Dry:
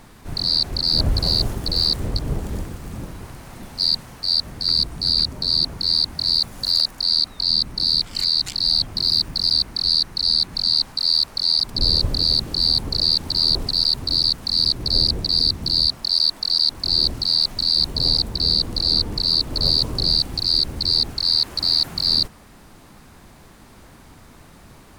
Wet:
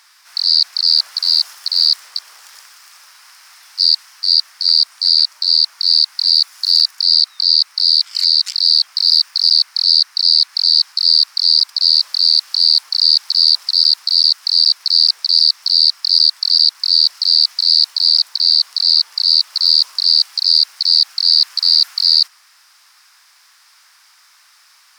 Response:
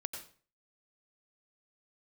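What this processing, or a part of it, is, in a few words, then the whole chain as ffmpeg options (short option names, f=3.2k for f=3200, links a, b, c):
headphones lying on a table: -af "highpass=f=1.2k:w=0.5412,highpass=f=1.2k:w=1.3066,equalizer=f=5.2k:t=o:w=0.42:g=11,volume=1dB"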